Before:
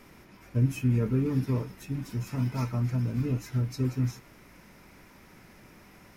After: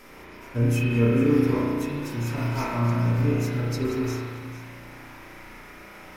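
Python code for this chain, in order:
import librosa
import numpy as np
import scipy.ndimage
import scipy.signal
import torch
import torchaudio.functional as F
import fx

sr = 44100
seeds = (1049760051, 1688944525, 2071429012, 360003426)

p1 = fx.peak_eq(x, sr, hz=130.0, db=-9.5, octaves=2.4)
p2 = p1 + fx.echo_single(p1, sr, ms=449, db=-15.0, dry=0)
p3 = fx.rev_spring(p2, sr, rt60_s=1.9, pass_ms=(34,), chirp_ms=45, drr_db=-5.5)
y = F.gain(torch.from_numpy(p3), 5.5).numpy()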